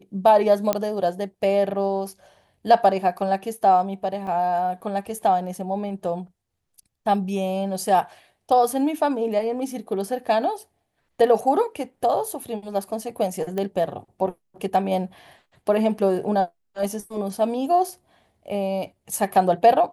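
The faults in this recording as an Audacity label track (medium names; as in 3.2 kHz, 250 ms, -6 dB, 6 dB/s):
0.730000	0.730000	pop -6 dBFS
4.270000	4.270000	dropout 3.3 ms
13.580000	13.580000	pop -15 dBFS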